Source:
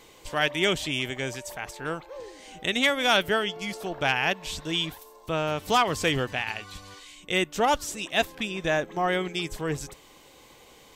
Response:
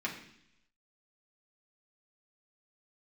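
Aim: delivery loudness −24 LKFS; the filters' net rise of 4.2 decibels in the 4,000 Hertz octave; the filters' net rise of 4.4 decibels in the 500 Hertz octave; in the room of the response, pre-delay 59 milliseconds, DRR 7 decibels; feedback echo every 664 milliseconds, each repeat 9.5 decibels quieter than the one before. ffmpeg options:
-filter_complex "[0:a]equalizer=frequency=500:width_type=o:gain=5.5,equalizer=frequency=4000:width_type=o:gain=5.5,aecho=1:1:664|1328|1992|2656:0.335|0.111|0.0365|0.012,asplit=2[link_01][link_02];[1:a]atrim=start_sample=2205,adelay=59[link_03];[link_02][link_03]afir=irnorm=-1:irlink=0,volume=-11.5dB[link_04];[link_01][link_04]amix=inputs=2:normalize=0,volume=-1dB"

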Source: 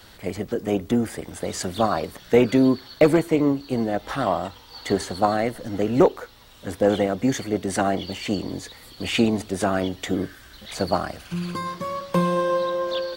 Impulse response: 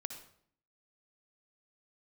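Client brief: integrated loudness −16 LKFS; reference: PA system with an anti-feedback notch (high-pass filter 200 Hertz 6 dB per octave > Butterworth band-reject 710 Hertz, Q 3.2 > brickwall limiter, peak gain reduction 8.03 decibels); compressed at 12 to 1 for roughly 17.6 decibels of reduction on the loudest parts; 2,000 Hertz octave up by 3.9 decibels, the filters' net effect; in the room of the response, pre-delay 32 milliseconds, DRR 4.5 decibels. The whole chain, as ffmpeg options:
-filter_complex "[0:a]equalizer=frequency=2000:width_type=o:gain=5,acompressor=threshold=-28dB:ratio=12,asplit=2[link_01][link_02];[1:a]atrim=start_sample=2205,adelay=32[link_03];[link_02][link_03]afir=irnorm=-1:irlink=0,volume=-3dB[link_04];[link_01][link_04]amix=inputs=2:normalize=0,highpass=frequency=200:poles=1,asuperstop=centerf=710:order=8:qfactor=3.2,volume=20dB,alimiter=limit=-5.5dB:level=0:latency=1"

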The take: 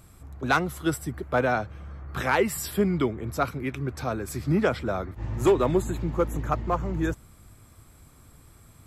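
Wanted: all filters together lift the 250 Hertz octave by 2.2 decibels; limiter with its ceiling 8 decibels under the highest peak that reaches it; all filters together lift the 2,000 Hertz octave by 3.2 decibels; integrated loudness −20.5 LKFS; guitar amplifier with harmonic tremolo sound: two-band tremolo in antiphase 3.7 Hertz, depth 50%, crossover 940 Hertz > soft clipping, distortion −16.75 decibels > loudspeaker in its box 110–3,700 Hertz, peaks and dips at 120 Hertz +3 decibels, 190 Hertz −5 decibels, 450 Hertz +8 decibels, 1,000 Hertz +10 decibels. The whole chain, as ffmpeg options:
ffmpeg -i in.wav -filter_complex "[0:a]equalizer=frequency=250:width_type=o:gain=3.5,equalizer=frequency=2000:width_type=o:gain=3.5,alimiter=limit=-18dB:level=0:latency=1,acrossover=split=940[link_01][link_02];[link_01]aeval=exprs='val(0)*(1-0.5/2+0.5/2*cos(2*PI*3.7*n/s))':channel_layout=same[link_03];[link_02]aeval=exprs='val(0)*(1-0.5/2-0.5/2*cos(2*PI*3.7*n/s))':channel_layout=same[link_04];[link_03][link_04]amix=inputs=2:normalize=0,asoftclip=threshold=-23dB,highpass=110,equalizer=frequency=120:width_type=q:width=4:gain=3,equalizer=frequency=190:width_type=q:width=4:gain=-5,equalizer=frequency=450:width_type=q:width=4:gain=8,equalizer=frequency=1000:width_type=q:width=4:gain=10,lowpass=frequency=3700:width=0.5412,lowpass=frequency=3700:width=1.3066,volume=11.5dB" out.wav

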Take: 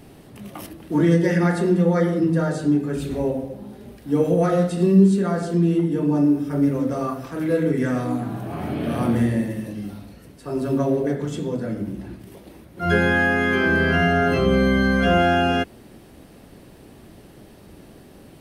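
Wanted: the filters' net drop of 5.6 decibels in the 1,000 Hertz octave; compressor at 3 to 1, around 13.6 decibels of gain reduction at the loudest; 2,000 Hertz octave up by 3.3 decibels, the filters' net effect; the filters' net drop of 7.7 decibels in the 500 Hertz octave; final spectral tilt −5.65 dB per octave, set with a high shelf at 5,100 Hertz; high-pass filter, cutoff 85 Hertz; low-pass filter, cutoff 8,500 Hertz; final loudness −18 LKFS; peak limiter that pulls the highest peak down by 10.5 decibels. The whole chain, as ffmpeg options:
ffmpeg -i in.wav -af "highpass=85,lowpass=8500,equalizer=frequency=500:width_type=o:gain=-9,equalizer=frequency=1000:width_type=o:gain=-8,equalizer=frequency=2000:width_type=o:gain=9,highshelf=frequency=5100:gain=-4,acompressor=threshold=-30dB:ratio=3,volume=19dB,alimiter=limit=-10dB:level=0:latency=1" out.wav

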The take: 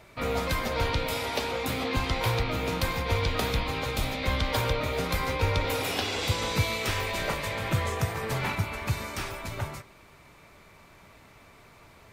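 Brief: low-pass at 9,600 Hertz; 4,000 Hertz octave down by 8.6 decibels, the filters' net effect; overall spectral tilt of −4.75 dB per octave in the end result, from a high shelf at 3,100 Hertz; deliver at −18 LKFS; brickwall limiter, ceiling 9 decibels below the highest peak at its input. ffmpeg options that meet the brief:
ffmpeg -i in.wav -af "lowpass=9600,highshelf=frequency=3100:gain=-6,equalizer=frequency=4000:width_type=o:gain=-6.5,volume=15.5dB,alimiter=limit=-8dB:level=0:latency=1" out.wav

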